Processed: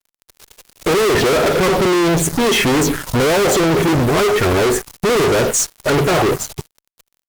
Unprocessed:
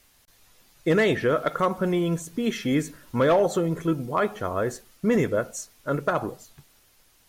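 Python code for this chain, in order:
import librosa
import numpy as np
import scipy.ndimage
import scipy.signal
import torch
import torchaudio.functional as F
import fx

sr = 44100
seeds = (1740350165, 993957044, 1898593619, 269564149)

y = fx.env_phaser(x, sr, low_hz=200.0, high_hz=3700.0, full_db=-18.5)
y = fx.graphic_eq_31(y, sr, hz=(200, 400, 12500), db=(-8, 11, -8))
y = fx.fuzz(y, sr, gain_db=46.0, gate_db=-52.0)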